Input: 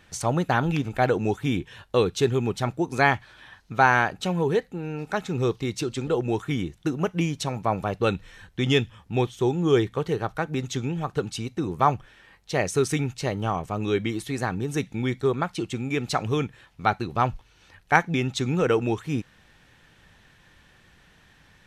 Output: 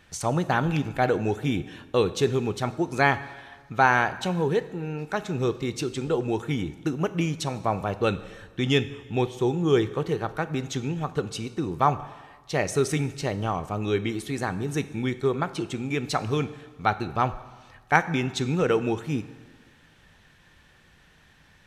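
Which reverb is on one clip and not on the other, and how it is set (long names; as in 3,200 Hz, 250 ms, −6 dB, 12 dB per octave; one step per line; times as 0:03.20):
dense smooth reverb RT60 1.4 s, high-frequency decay 0.85×, DRR 13 dB
level −1 dB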